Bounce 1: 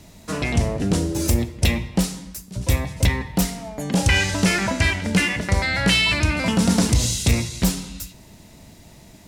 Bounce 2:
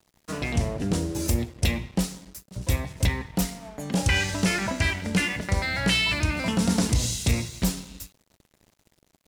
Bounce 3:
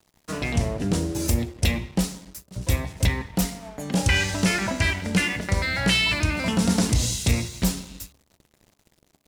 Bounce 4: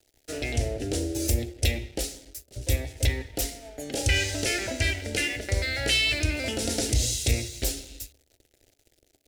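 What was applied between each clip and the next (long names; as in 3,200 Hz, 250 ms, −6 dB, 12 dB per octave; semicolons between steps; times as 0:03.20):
dead-zone distortion −41.5 dBFS; level −4.5 dB
hum removal 70.86 Hz, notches 17; level +2 dB
phaser with its sweep stopped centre 440 Hz, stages 4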